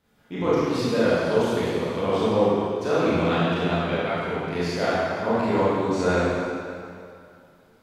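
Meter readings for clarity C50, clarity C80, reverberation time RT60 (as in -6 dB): -5.5 dB, -2.5 dB, 2.4 s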